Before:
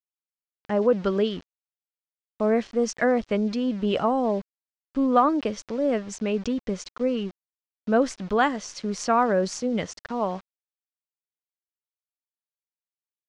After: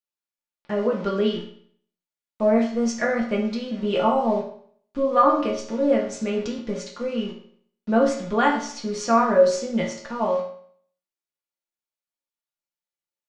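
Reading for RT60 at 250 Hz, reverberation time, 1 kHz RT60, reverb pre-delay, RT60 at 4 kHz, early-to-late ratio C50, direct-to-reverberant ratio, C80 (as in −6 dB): 0.60 s, 0.55 s, 0.60 s, 3 ms, 0.50 s, 6.5 dB, −3.5 dB, 9.5 dB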